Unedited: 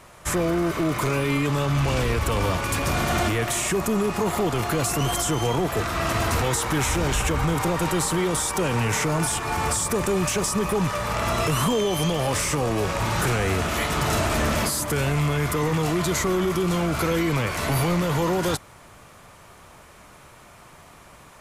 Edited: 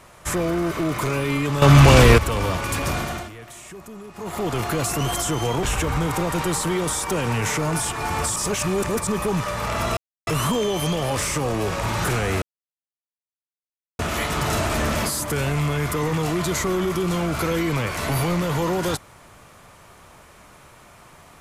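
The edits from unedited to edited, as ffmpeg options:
-filter_complex "[0:a]asplit=10[a][b][c][d][e][f][g][h][i][j];[a]atrim=end=1.622[k];[b]atrim=start=1.618:end=2.182,asetpts=PTS-STARTPTS,volume=11.5dB[l];[c]atrim=start=2.178:end=3.29,asetpts=PTS-STARTPTS,afade=t=out:st=0.712:d=0.4:silence=0.158489[m];[d]atrim=start=3.29:end=4.14,asetpts=PTS-STARTPTS,volume=-16dB[n];[e]atrim=start=4.14:end=5.632,asetpts=PTS-STARTPTS,afade=t=in:d=0.4:silence=0.158489[o];[f]atrim=start=7.098:end=9.832[p];[g]atrim=start=9.828:end=10.542,asetpts=PTS-STARTPTS,areverse[q];[h]atrim=start=10.538:end=11.44,asetpts=PTS-STARTPTS,afade=t=out:st=0.898:d=0.004:c=hsin,apad=pad_dur=0.3[r];[i]atrim=start=11.44:end=13.59,asetpts=PTS-STARTPTS,afade=t=in:d=0.004:c=hsin,afade=t=out:st=2.146:d=0.004:c=hsin,apad=pad_dur=1.57[s];[j]atrim=start=13.59,asetpts=PTS-STARTPTS,afade=t=in:d=0.004:c=hsin[t];[k][l]acrossfade=d=0.004:c1=hsin:c2=hsin[u];[m][n][o]concat=n=3:v=0:a=1[v];[u][v]acrossfade=d=0.004:c1=hsin:c2=hsin[w];[w][p]acrossfade=d=0.004:c1=hsin:c2=hsin[x];[x][q]acrossfade=d=0.004:c1=hsin:c2=hsin[y];[r][s][t]concat=n=3:v=0:a=1[z];[y][z]acrossfade=d=0.004:c1=hsin:c2=hsin"

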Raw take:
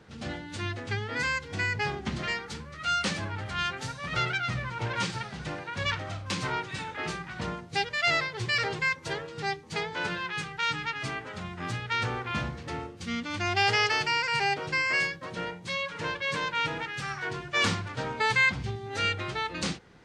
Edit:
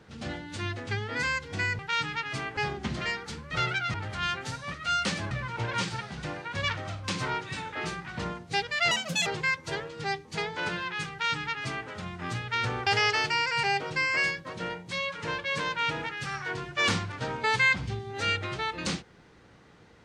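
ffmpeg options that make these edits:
-filter_complex "[0:a]asplit=10[a][b][c][d][e][f][g][h][i][j];[a]atrim=end=1.792[k];[b]atrim=start=10.488:end=11.272[l];[c]atrim=start=1.788:end=2.732[m];[d]atrim=start=4.098:end=4.532[n];[e]atrim=start=3.298:end=4.102[o];[f]atrim=start=2.728:end=3.302[p];[g]atrim=start=4.528:end=8.134[q];[h]atrim=start=8.13:end=8.65,asetpts=PTS-STARTPTS,asetrate=64386,aresample=44100[r];[i]atrim=start=8.646:end=12.252[s];[j]atrim=start=13.628[t];[k][l]acrossfade=d=0.004:c1=hsin:c2=hsin[u];[u][m]acrossfade=d=0.004:c1=hsin:c2=hsin[v];[v][n]acrossfade=d=0.004:c1=hsin:c2=hsin[w];[w][o]acrossfade=d=0.004:c1=hsin:c2=hsin[x];[x][p]acrossfade=d=0.004:c1=hsin:c2=hsin[y];[y][q]acrossfade=d=0.004:c1=hsin:c2=hsin[z];[z][r]acrossfade=d=0.004:c1=hsin:c2=hsin[aa];[aa][s]acrossfade=d=0.004:c1=hsin:c2=hsin[ab];[ab][t]acrossfade=d=0.004:c1=hsin:c2=hsin"

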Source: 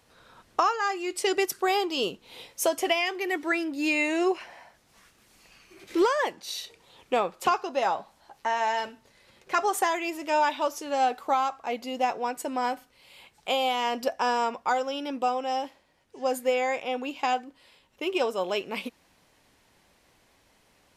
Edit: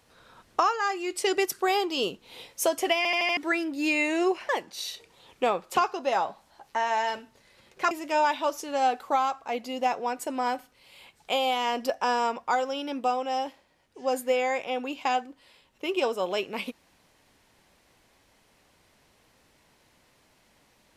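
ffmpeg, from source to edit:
-filter_complex "[0:a]asplit=8[a][b][c][d][e][f][g][h];[a]atrim=end=3.052[i];[b]atrim=start=2.968:end=3.052[j];[c]atrim=start=2.968:end=3.052[k];[d]atrim=start=2.968:end=3.052[l];[e]atrim=start=2.968:end=3.052[m];[f]atrim=start=3.368:end=4.492[n];[g]atrim=start=6.188:end=9.612[o];[h]atrim=start=10.088[p];[i][j]acrossfade=d=0.004:c1=hsin:c2=hsin[q];[q][k]acrossfade=d=0.004:c1=hsin:c2=hsin[r];[r][l]acrossfade=d=0.004:c1=hsin:c2=hsin[s];[s][m]acrossfade=d=0.004:c1=hsin:c2=hsin[t];[t][n]acrossfade=d=0.004:c1=hsin:c2=hsin[u];[u][o]acrossfade=d=0.004:c1=hsin:c2=hsin[v];[v][p]acrossfade=d=0.004:c1=hsin:c2=hsin"

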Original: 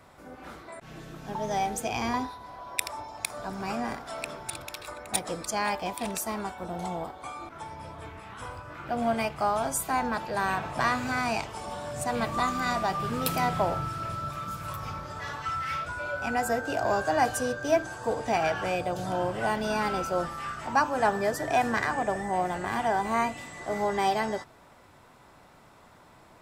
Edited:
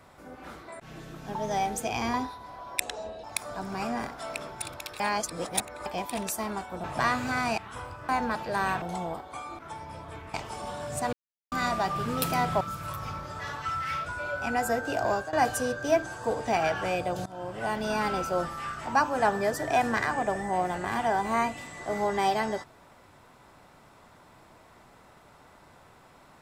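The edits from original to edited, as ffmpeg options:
-filter_complex "[0:a]asplit=15[a][b][c][d][e][f][g][h][i][j][k][l][m][n][o];[a]atrim=end=2.804[p];[b]atrim=start=2.8:end=3.12,asetpts=PTS-STARTPTS,asetrate=32193,aresample=44100[q];[c]atrim=start=3.116:end=4.882[r];[d]atrim=start=4.878:end=5.742,asetpts=PTS-STARTPTS,areverse[s];[e]atrim=start=5.738:end=6.722[t];[f]atrim=start=10.638:end=11.382[u];[g]atrim=start=8.238:end=8.752[v];[h]atrim=start=9.908:end=10.642[w];[i]atrim=start=6.718:end=8.242[x];[j]atrim=start=11.378:end=12.17,asetpts=PTS-STARTPTS,afade=t=out:st=0.788:d=0.004:c=hsin[y];[k]atrim=start=12.17:end=12.56,asetpts=PTS-STARTPTS,volume=0[z];[l]atrim=start=12.56:end=13.652,asetpts=PTS-STARTPTS,afade=t=in:d=0.004:c=hsin[aa];[m]atrim=start=14.408:end=17.13,asetpts=PTS-STARTPTS,afade=t=out:st=2.412:d=0.31:c=qsin:silence=0.141254[ab];[n]atrim=start=17.13:end=19.06,asetpts=PTS-STARTPTS,afade=t=in:d=0.004:c=hsin:silence=0.141254,afade=t=out:st=1.926:d=0.004:c=hsin:silence=0.105925[ac];[o]atrim=start=19.06,asetpts=PTS-STARTPTS,afade=t=in:d=0.86:c=qsin:silence=0.105925[ad];[p][q]acrossfade=d=0.004:c1=hsin:c2=hsin[ae];[ae][r]acrossfade=d=0.004:c1=hsin:c2=hsin[af];[af][s]acrossfade=d=0.004:c1=hsin:c2=hsin[ag];[ag][t]acrossfade=d=0.004:c1=hsin:c2=hsin[ah];[ah][u]acrossfade=d=0.004:c1=hsin:c2=hsin[ai];[ai][v]acrossfade=d=0.004:c1=hsin:c2=hsin[aj];[aj][w]acrossfade=d=0.004:c1=hsin:c2=hsin[ak];[ak][x]acrossfade=d=0.004:c1=hsin:c2=hsin[al];[y][z][aa]concat=n=3:v=0:a=1[am];[al][am]acrossfade=d=0.004:c1=hsin:c2=hsin[an];[ab][ac][ad]concat=n=3:v=0:a=1[ao];[an][ao]acrossfade=d=0.004:c1=hsin:c2=hsin"

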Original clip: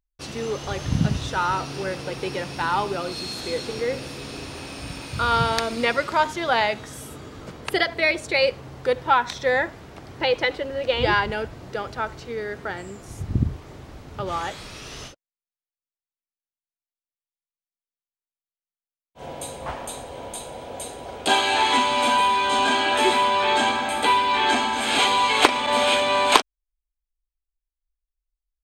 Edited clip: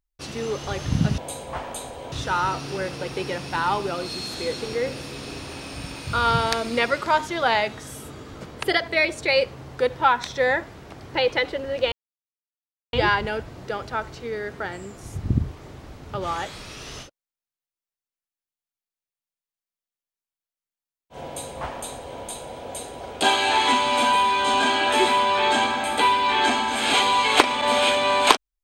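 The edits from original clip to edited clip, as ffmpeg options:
-filter_complex "[0:a]asplit=4[a][b][c][d];[a]atrim=end=1.182[e];[b]atrim=start=19.308:end=20.252[f];[c]atrim=start=1.178:end=10.98,asetpts=PTS-STARTPTS,afade=t=out:st=9.798:d=0.004:c=hsin,apad=pad_dur=1.01[g];[d]atrim=start=10.98,asetpts=PTS-STARTPTS,afade=t=in:d=0.004:c=hsin[h];[e][f]acrossfade=d=0.004:c1=hsin:c2=hsin[i];[g][h]concat=n=2:v=0:a=1[j];[i][j]acrossfade=d=0.004:c1=hsin:c2=hsin"

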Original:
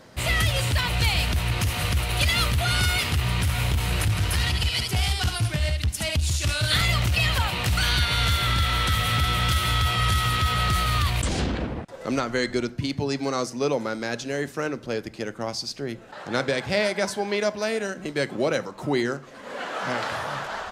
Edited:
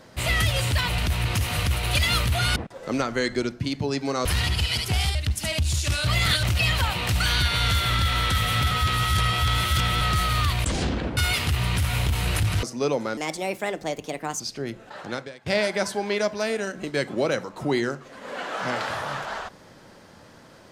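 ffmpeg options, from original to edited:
-filter_complex "[0:a]asplit=14[a][b][c][d][e][f][g][h][i][j][k][l][m][n];[a]atrim=end=0.982[o];[b]atrim=start=1.238:end=2.822[p];[c]atrim=start=11.738:end=13.432[q];[d]atrim=start=4.278:end=5.182[r];[e]atrim=start=5.718:end=6.642[s];[f]atrim=start=6.638:end=7.002,asetpts=PTS-STARTPTS,areverse[t];[g]atrim=start=6.998:end=9.282[u];[h]atrim=start=9.278:end=10.582,asetpts=PTS-STARTPTS,areverse[v];[i]atrim=start=10.578:end=11.742[w];[j]atrim=start=2.818:end=4.282[x];[k]atrim=start=13.428:end=13.974[y];[l]atrim=start=13.97:end=15.62,asetpts=PTS-STARTPTS,asetrate=59094,aresample=44100,atrim=end_sample=54302,asetpts=PTS-STARTPTS[z];[m]atrim=start=15.616:end=16.68,asetpts=PTS-STARTPTS,afade=t=out:st=0.604:d=0.46:c=qua:silence=0.0707946[aa];[n]atrim=start=16.68,asetpts=PTS-STARTPTS,afade=t=in:d=0.004:c=hsin:silence=0.0707946[ab];[o][p]acrossfade=d=0.004:c1=hsin:c2=hsin[ac];[ac][q]acrossfade=d=0.004:c1=hsin:c2=hsin[ad];[ad][r]acrossfade=d=0.004:c1=hsin:c2=hsin[ae];[ae][s]acrossfade=d=0.004:c1=hsin:c2=hsin[af];[af][t]acrossfade=d=0.004:c1=hsin:c2=hsin[ag];[ag][u]acrossfade=d=0.004:c1=hsin:c2=hsin[ah];[ah][v]acrossfade=d=0.004:c1=hsin:c2=hsin[ai];[ai][w]acrossfade=d=0.004:c1=hsin:c2=hsin[aj];[aj][x]acrossfade=d=0.004:c1=hsin:c2=hsin[ak];[ak][y]acrossfade=d=0.004:c1=hsin:c2=hsin[al];[al][z]acrossfade=d=0.004:c1=hsin:c2=hsin[am];[aa][ab]concat=n=2:v=0:a=1[an];[am][an]acrossfade=d=0.004:c1=hsin:c2=hsin"

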